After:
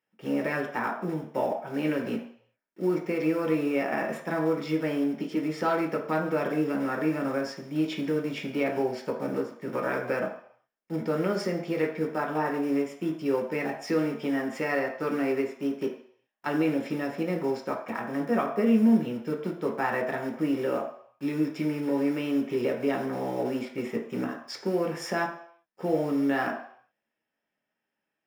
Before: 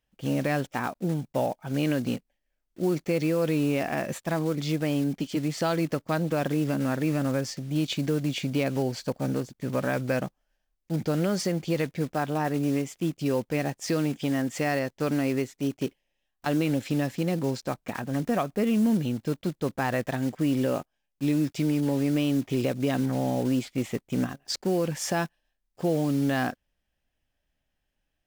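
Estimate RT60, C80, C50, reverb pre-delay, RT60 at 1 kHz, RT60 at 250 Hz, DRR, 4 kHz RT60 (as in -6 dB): 0.60 s, 10.0 dB, 7.0 dB, 3 ms, 0.60 s, 0.45 s, 0.0 dB, 0.65 s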